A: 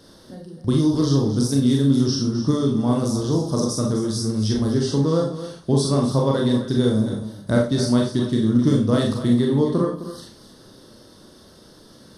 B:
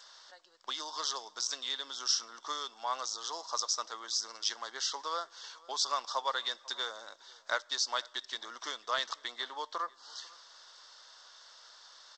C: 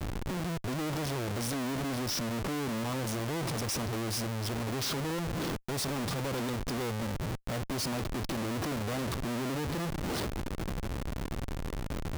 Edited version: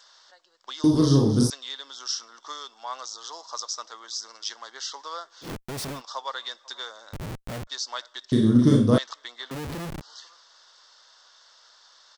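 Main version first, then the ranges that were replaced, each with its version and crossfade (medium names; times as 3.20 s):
B
0.84–1.50 s: from A
5.46–5.97 s: from C, crossfade 0.10 s
7.13–7.67 s: from C
8.32–8.98 s: from A
9.51–10.01 s: from C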